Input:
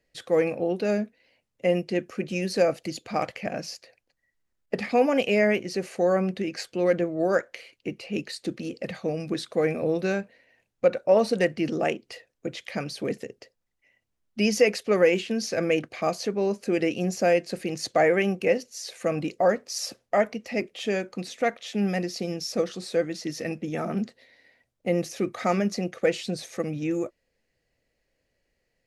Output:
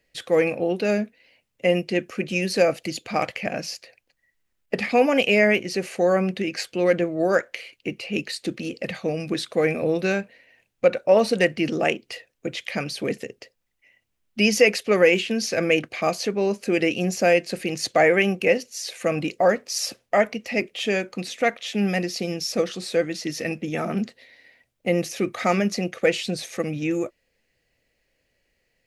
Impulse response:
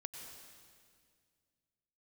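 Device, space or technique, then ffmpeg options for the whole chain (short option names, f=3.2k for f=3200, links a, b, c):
presence and air boost: -af "equalizer=f=2.6k:t=o:w=1.1:g=5.5,highshelf=f=9.9k:g=6.5,volume=2.5dB"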